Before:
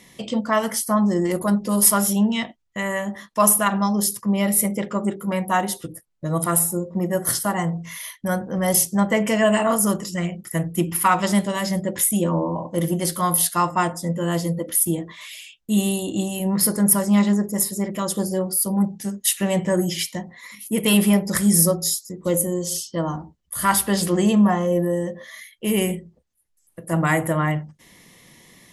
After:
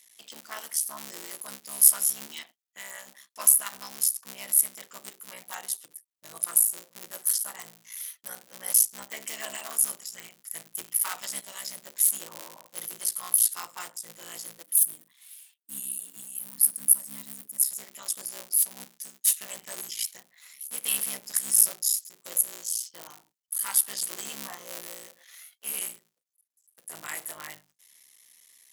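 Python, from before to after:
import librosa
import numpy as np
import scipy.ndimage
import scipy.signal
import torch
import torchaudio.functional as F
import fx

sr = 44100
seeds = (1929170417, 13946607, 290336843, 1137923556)

y = fx.cycle_switch(x, sr, every=3, mode='muted')
y = np.diff(y, prepend=0.0)
y = fx.spec_box(y, sr, start_s=14.63, length_s=2.99, low_hz=320.0, high_hz=8100.0, gain_db=-10)
y = F.gain(torch.from_numpy(y), -2.0).numpy()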